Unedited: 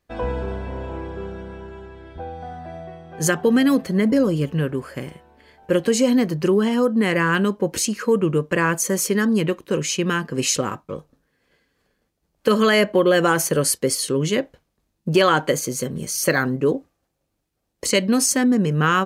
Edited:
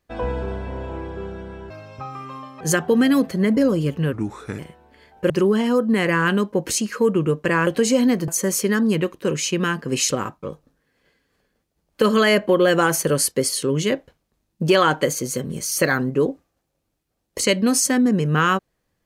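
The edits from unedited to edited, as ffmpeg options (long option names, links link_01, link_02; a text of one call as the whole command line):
ffmpeg -i in.wav -filter_complex "[0:a]asplit=8[link_01][link_02][link_03][link_04][link_05][link_06][link_07][link_08];[link_01]atrim=end=1.704[link_09];[link_02]atrim=start=1.7:end=3.16,asetpts=PTS-STARTPTS,asetrate=71001,aresample=44100,atrim=end_sample=39991,asetpts=PTS-STARTPTS[link_10];[link_03]atrim=start=3.156:end=4.684[link_11];[link_04]atrim=start=4.68:end=5.05,asetpts=PTS-STARTPTS,asetrate=35280,aresample=44100,atrim=end_sample=20396,asetpts=PTS-STARTPTS[link_12];[link_05]atrim=start=5.046:end=5.762[link_13];[link_06]atrim=start=6.368:end=8.742[link_14];[link_07]atrim=start=5.758:end=6.372[link_15];[link_08]atrim=start=8.738[link_16];[link_09][link_10]acrossfade=duration=0.004:curve1=hsin:curve2=hsin[link_17];[link_17][link_11]acrossfade=duration=0.004:curve1=hsin:curve2=hsin[link_18];[link_18][link_12]acrossfade=duration=0.004:curve1=hsin:curve2=hsin[link_19];[link_19][link_13]acrossfade=duration=0.004:curve1=hsin:curve2=hsin[link_20];[link_20][link_14]acrossfade=duration=0.004:curve1=hsin:curve2=hsin[link_21];[link_21][link_15]acrossfade=duration=0.004:curve1=hsin:curve2=hsin[link_22];[link_22][link_16]acrossfade=duration=0.004:curve1=hsin:curve2=hsin" out.wav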